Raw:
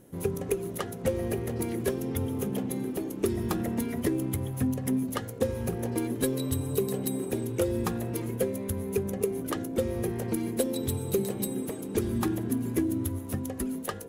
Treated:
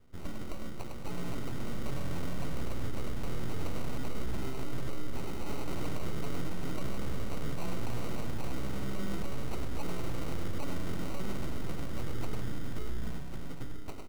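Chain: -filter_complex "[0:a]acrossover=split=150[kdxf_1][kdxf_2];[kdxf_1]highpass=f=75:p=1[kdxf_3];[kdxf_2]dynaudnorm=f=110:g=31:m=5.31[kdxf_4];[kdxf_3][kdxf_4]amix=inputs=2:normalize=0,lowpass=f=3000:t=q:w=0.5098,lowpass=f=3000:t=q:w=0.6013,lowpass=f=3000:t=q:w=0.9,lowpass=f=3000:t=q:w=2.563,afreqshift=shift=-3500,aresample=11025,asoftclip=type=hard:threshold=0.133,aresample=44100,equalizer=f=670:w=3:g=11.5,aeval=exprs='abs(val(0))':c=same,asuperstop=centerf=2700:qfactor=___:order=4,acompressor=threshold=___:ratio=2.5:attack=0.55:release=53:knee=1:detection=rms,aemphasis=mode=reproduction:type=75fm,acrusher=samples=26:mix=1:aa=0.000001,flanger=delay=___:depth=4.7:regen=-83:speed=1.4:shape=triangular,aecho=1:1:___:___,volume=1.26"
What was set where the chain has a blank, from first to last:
6.9, 0.0501, 2, 102, 0.531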